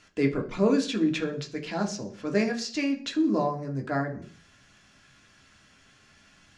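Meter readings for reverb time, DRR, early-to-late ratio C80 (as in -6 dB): 0.40 s, 2.0 dB, 18.0 dB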